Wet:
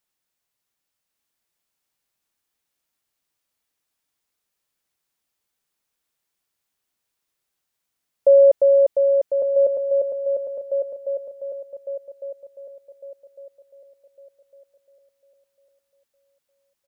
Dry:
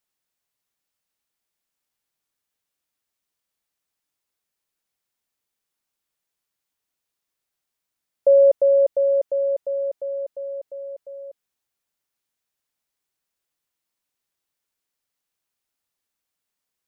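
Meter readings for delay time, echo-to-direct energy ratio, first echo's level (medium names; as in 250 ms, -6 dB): 1154 ms, -3.5 dB, -4.0 dB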